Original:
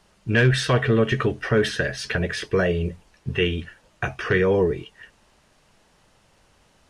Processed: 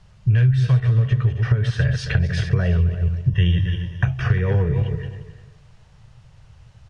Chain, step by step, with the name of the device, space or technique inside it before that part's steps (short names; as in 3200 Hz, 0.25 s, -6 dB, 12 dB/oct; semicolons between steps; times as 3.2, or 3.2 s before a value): regenerating reverse delay 0.134 s, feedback 44%, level -9 dB; jukebox (LPF 7000 Hz 12 dB/oct; resonant low shelf 180 Hz +13 dB, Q 3; compressor 6:1, threshold -15 dBFS, peak gain reduction 18 dB); 3.29–4.04 ripple EQ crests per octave 1.2, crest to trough 13 dB; outdoor echo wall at 60 m, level -16 dB